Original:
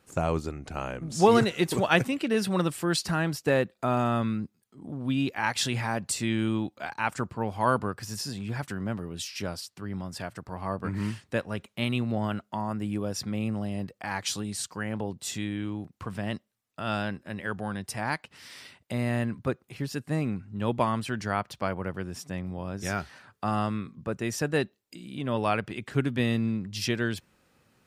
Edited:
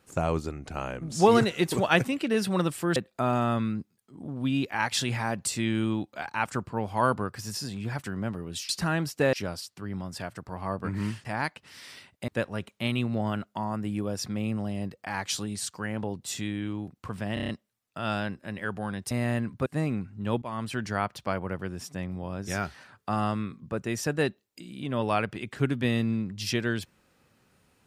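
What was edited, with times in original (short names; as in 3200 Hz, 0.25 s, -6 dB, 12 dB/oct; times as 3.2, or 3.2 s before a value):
2.96–3.6 move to 9.33
16.31 stutter 0.03 s, 6 plays
17.93–18.96 move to 11.25
19.51–20.01 cut
20.77–21.08 fade in, from -20 dB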